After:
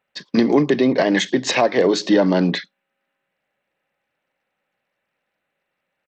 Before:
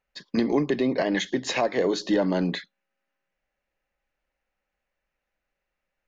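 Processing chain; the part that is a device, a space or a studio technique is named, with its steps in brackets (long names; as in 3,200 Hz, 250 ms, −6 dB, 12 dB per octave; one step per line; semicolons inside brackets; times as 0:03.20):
Bluetooth headset (high-pass filter 100 Hz 24 dB per octave; downsampling to 16,000 Hz; level +7.5 dB; SBC 64 kbit/s 32,000 Hz)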